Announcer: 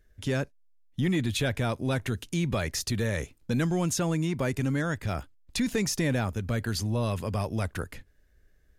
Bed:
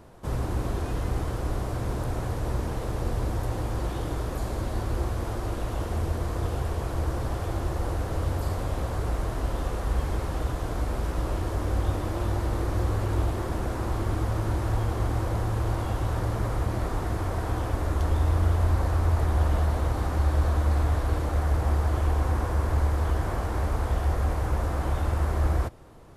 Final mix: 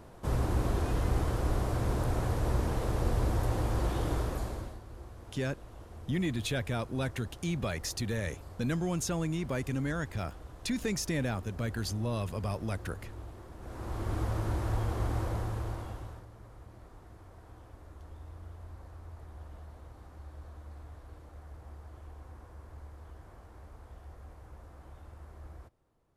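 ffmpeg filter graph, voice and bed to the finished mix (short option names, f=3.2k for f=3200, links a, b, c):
-filter_complex "[0:a]adelay=5100,volume=-5dB[a];[1:a]volume=13dB,afade=t=out:st=4.16:d=0.63:silence=0.125893,afade=t=in:st=13.58:d=0.62:silence=0.199526,afade=t=out:st=15.21:d=1.05:silence=0.112202[b];[a][b]amix=inputs=2:normalize=0"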